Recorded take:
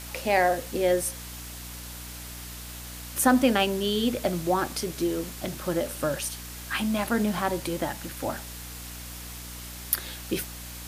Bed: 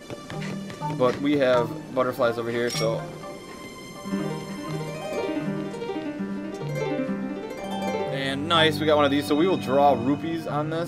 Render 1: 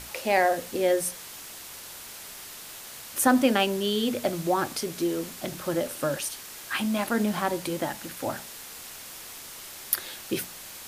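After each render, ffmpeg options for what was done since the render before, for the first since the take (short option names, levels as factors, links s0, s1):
-af "bandreject=f=60:t=h:w=6,bandreject=f=120:t=h:w=6,bandreject=f=180:t=h:w=6,bandreject=f=240:t=h:w=6,bandreject=f=300:t=h:w=6"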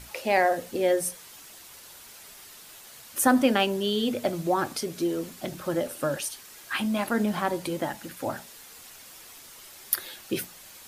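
-af "afftdn=nr=7:nf=-43"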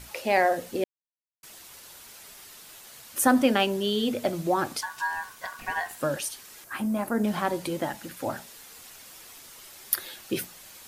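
-filter_complex "[0:a]asettb=1/sr,asplit=3[s0][s1][s2];[s0]atrim=end=4.814[s3];[s1]atrim=start=4.81:end=6.01,asetpts=PTS-STARTPTS,afade=t=in:d=0.004:c=qsin,afade=t=out:st=1.196:d=0.004:c=qsin,aeval=exprs='val(0)*sin(2*PI*1300*n/s)':c=same[s4];[s2]atrim=start=6.006[s5];[s3][s4]acrossfade=d=0.004:c1=hsin:c2=qsin[s6];[s6][s5]acrossfade=d=0.004:c1=qsin:c2=hsin,asettb=1/sr,asplit=3[s7][s8][s9];[s7]atrim=end=6.644[s10];[s8]atrim=start=6.64:end=7.24,asetpts=PTS-STARTPTS,afade=t=in:d=0.004:c=qsin,afade=t=out:st=0.596:d=0.004:c=qsin,equalizer=f=3400:w=0.77:g=-13[s11];[s9]atrim=start=7.236[s12];[s10][s11]acrossfade=d=0.004:c1=hsin:c2=qsin[s13];[s13][s12]acrossfade=d=0.004:c1=qsin:c2=hsin,asplit=3[s14][s15][s16];[s14]atrim=end=0.84,asetpts=PTS-STARTPTS,afade=t=out:st=0.836:d=0.004:c=hsin[s17];[s15]atrim=start=0.84:end=1.43,asetpts=PTS-STARTPTS,volume=0[s18];[s16]atrim=start=1.43,asetpts=PTS-STARTPTS,afade=t=in:d=0.004:c=hsin[s19];[s17][s18][s19]concat=n=3:v=0:a=1"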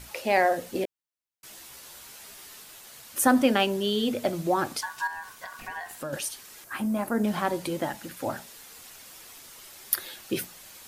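-filter_complex "[0:a]asettb=1/sr,asplit=3[s0][s1][s2];[s0]atrim=end=0.744[s3];[s1]atrim=start=0.74:end=2.64,asetpts=PTS-STARTPTS,afade=t=in:d=0.004:c=qsin,afade=t=out:st=1.896:d=0.004:c=qsin,asplit=2[s4][s5];[s5]adelay=15,volume=0.562[s6];[s4][s6]amix=inputs=2:normalize=0,atrim=end_sample=83790[s7];[s2]atrim=start=2.636[s8];[s3][s7]acrossfade=d=0.004:c1=hsin:c2=qsin[s9];[s9][s8]acrossfade=d=0.004:c1=qsin:c2=hsin,asettb=1/sr,asplit=3[s10][s11][s12];[s10]atrim=end=5.074[s13];[s11]atrim=start=5.07:end=6.13,asetpts=PTS-STARTPTS,afade=t=in:d=0.004:c=qsin,afade=t=out:st=1.056:d=0.004:c=qsin,acompressor=threshold=0.0141:ratio=2:attack=3.2:release=140:knee=1:detection=peak[s14];[s12]atrim=start=6.126[s15];[s13][s14]acrossfade=d=0.004:c1=hsin:c2=qsin[s16];[s16][s15]acrossfade=d=0.004:c1=qsin:c2=hsin"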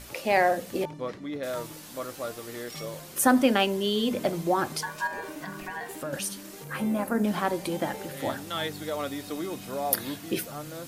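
-filter_complex "[1:a]volume=0.237[s0];[0:a][s0]amix=inputs=2:normalize=0"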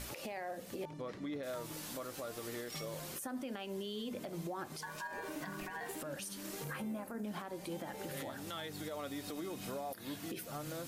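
-af "acompressor=threshold=0.0126:ratio=4,alimiter=level_in=2.82:limit=0.0631:level=0:latency=1:release=94,volume=0.355"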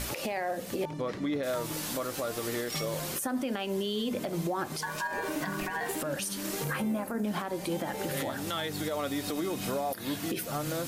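-af "volume=3.16"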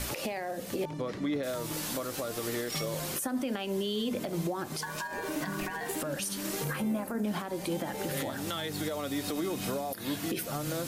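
-filter_complex "[0:a]acrossover=split=420|3000[s0][s1][s2];[s1]acompressor=threshold=0.0178:ratio=6[s3];[s0][s3][s2]amix=inputs=3:normalize=0"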